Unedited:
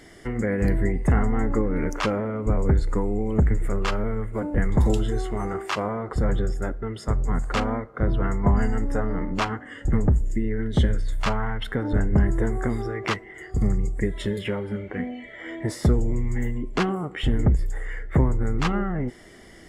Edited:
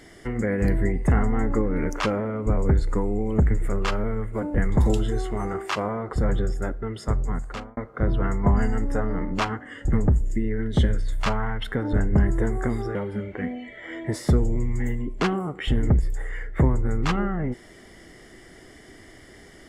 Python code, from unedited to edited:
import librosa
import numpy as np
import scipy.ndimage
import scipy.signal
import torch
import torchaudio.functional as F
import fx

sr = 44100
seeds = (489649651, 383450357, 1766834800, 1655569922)

y = fx.edit(x, sr, fx.fade_out_span(start_s=7.14, length_s=0.63),
    fx.cut(start_s=12.95, length_s=1.56), tone=tone)